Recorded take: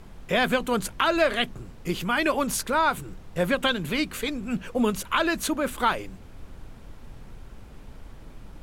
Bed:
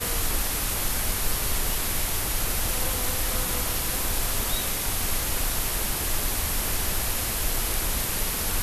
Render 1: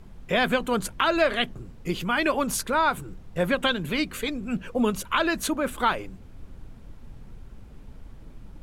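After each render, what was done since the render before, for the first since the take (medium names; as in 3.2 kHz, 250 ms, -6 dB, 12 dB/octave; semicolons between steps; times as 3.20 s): noise reduction 6 dB, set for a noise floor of -45 dBFS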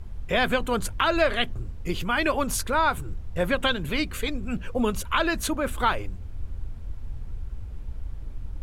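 resonant low shelf 120 Hz +9.5 dB, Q 1.5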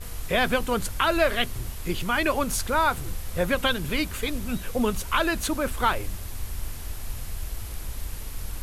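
add bed -14.5 dB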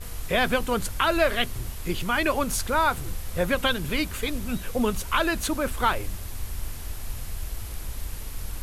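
no audible change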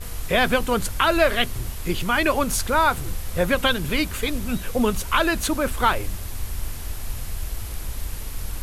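trim +3.5 dB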